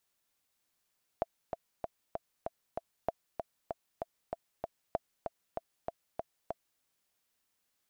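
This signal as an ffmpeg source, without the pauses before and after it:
-f lavfi -i "aevalsrc='pow(10,(-17-5.5*gte(mod(t,6*60/193),60/193))/20)*sin(2*PI*669*mod(t,60/193))*exp(-6.91*mod(t,60/193)/0.03)':d=5.59:s=44100"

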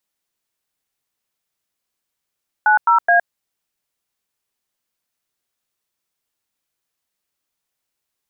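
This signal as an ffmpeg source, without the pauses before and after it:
-f lavfi -i "aevalsrc='0.237*clip(min(mod(t,0.212),0.114-mod(t,0.212))/0.002,0,1)*(eq(floor(t/0.212),0)*(sin(2*PI*852*mod(t,0.212))+sin(2*PI*1477*mod(t,0.212)))+eq(floor(t/0.212),1)*(sin(2*PI*941*mod(t,0.212))+sin(2*PI*1336*mod(t,0.212)))+eq(floor(t/0.212),2)*(sin(2*PI*697*mod(t,0.212))+sin(2*PI*1633*mod(t,0.212))))':d=0.636:s=44100"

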